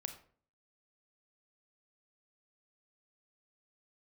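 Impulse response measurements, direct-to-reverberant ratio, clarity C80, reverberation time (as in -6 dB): 7.0 dB, 14.0 dB, 0.50 s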